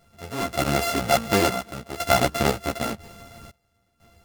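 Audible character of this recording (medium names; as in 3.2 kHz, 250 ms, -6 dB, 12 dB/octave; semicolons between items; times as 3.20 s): a buzz of ramps at a fixed pitch in blocks of 64 samples; random-step tremolo 2 Hz, depth 95%; a shimmering, thickened sound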